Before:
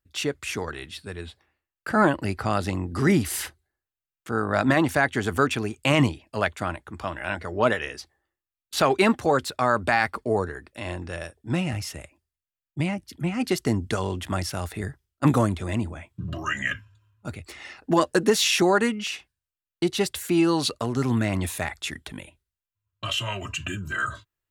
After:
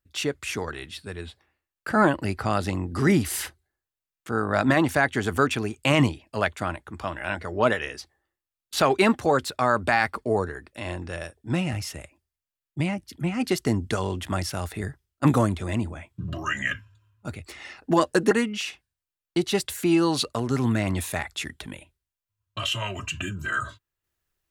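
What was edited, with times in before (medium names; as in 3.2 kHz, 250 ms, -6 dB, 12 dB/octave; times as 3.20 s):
18.31–18.77 s: delete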